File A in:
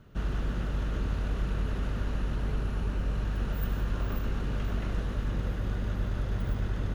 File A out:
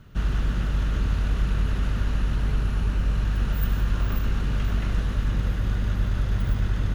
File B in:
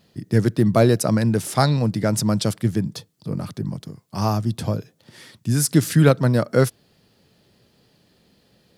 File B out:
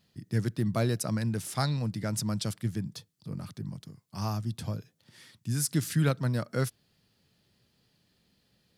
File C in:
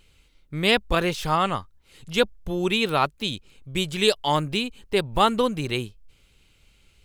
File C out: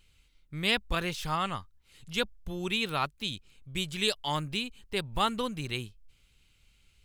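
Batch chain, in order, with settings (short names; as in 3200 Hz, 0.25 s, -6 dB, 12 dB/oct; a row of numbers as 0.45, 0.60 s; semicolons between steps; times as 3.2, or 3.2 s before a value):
bell 480 Hz -7 dB 2.2 oct; normalise peaks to -12 dBFS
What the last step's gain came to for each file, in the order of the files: +7.0, -8.0, -5.0 dB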